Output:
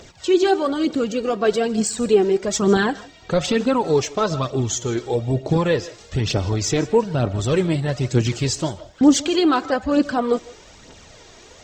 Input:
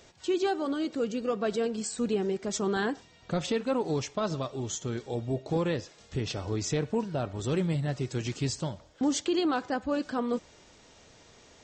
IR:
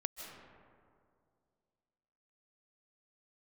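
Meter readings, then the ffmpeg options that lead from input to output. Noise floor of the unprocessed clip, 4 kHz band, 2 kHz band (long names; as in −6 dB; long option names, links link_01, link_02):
−57 dBFS, +10.5 dB, +10.0 dB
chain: -filter_complex "[0:a]aphaser=in_gain=1:out_gain=1:delay=3.2:decay=0.5:speed=1.1:type=triangular,asplit=2[link_01][link_02];[1:a]atrim=start_sample=2205,afade=type=out:start_time=0.22:duration=0.01,atrim=end_sample=10143[link_03];[link_02][link_03]afir=irnorm=-1:irlink=0,volume=-2dB[link_04];[link_01][link_04]amix=inputs=2:normalize=0,volume=5dB"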